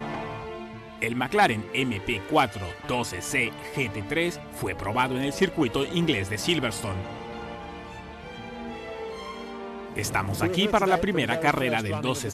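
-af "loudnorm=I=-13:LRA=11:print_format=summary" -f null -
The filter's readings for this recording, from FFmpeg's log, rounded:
Input Integrated:    -26.2 LUFS
Input True Peak:     -10.9 dBTP
Input LRA:             4.7 LU
Input Threshold:     -36.9 LUFS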